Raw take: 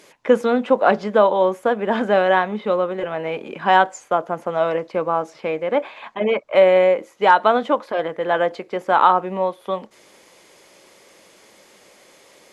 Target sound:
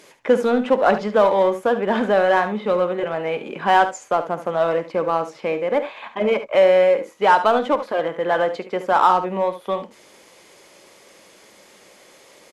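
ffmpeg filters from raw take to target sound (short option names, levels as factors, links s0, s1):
-filter_complex "[0:a]asplit=2[s0][s1];[s1]asoftclip=type=hard:threshold=0.126,volume=0.562[s2];[s0][s2]amix=inputs=2:normalize=0,aecho=1:1:51|72:0.133|0.251,volume=0.708"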